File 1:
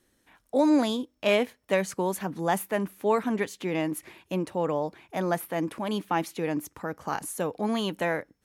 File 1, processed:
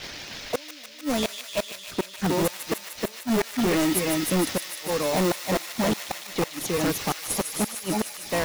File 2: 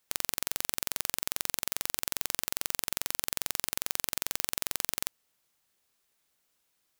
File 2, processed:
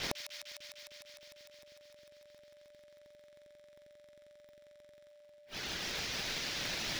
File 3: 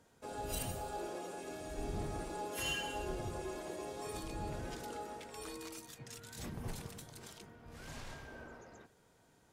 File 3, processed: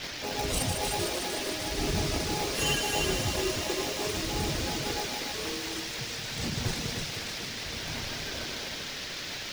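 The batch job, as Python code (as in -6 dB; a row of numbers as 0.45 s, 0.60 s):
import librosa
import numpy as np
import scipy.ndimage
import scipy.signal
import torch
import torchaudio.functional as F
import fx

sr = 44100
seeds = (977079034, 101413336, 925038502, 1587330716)

p1 = fx.highpass(x, sr, hz=79.0, slope=6)
p2 = p1 + 10.0 ** (-5.5 / 20.0) * np.pad(p1, (int(312 * sr / 1000.0), 0))[:len(p1)]
p3 = fx.dmg_noise_band(p2, sr, seeds[0], low_hz=1300.0, high_hz=6200.0, level_db=-46.0)
p4 = fx.dereverb_blind(p3, sr, rt60_s=0.76)
p5 = fx.low_shelf(p4, sr, hz=110.0, db=4.5)
p6 = fx.gate_flip(p5, sr, shuts_db=-18.0, range_db=-40)
p7 = fx.env_lowpass(p6, sr, base_hz=3000.0, full_db=-32.5)
p8 = fx.sample_hold(p7, sr, seeds[1], rate_hz=1600.0, jitter_pct=0)
p9 = p7 + (p8 * 10.0 ** (-4.0 / 20.0))
p10 = p9 + 10.0 ** (-65.0 / 20.0) * np.sin(2.0 * np.pi * 590.0 * np.arange(len(p9)) / sr)
p11 = np.clip(10.0 ** (27.5 / 20.0) * p10, -1.0, 1.0) / 10.0 ** (27.5 / 20.0)
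p12 = fx.high_shelf(p11, sr, hz=6100.0, db=7.5)
p13 = p12 + fx.echo_wet_highpass(p12, sr, ms=151, feedback_pct=82, hz=1900.0, wet_db=-6.0, dry=0)
y = p13 * 10.0 ** (7.5 / 20.0)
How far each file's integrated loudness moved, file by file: +2.0 LU, -7.0 LU, +12.5 LU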